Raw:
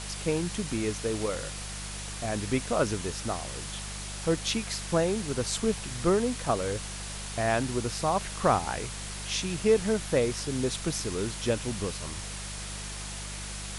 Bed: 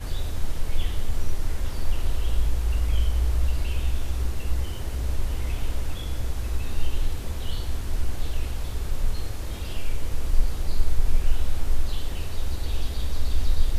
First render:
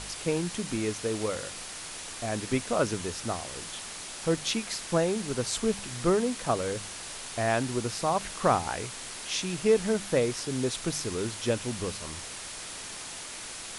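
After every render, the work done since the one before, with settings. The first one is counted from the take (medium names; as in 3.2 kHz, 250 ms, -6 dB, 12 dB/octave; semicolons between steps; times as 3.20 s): de-hum 50 Hz, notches 4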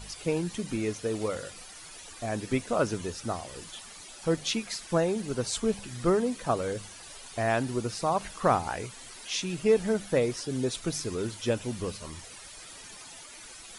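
noise reduction 12 dB, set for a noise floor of -41 dBFS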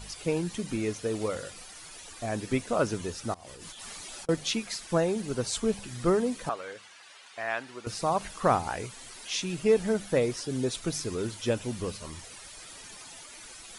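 3.34–4.29 s: compressor with a negative ratio -47 dBFS; 6.49–7.87 s: band-pass filter 1.9 kHz, Q 0.81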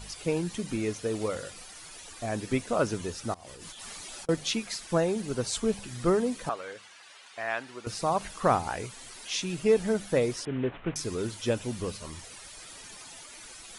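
10.45–10.96 s: CVSD coder 16 kbps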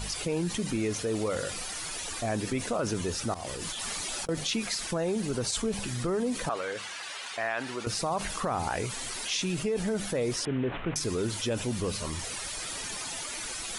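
peak limiter -22 dBFS, peak gain reduction 11 dB; level flattener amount 50%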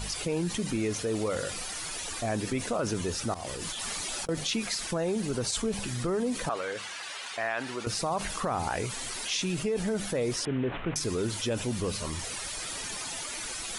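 no audible change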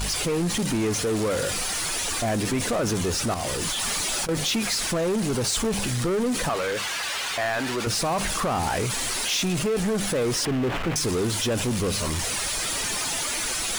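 power-law waveshaper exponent 0.5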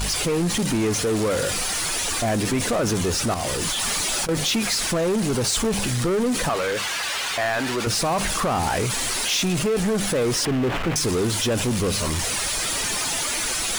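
trim +2.5 dB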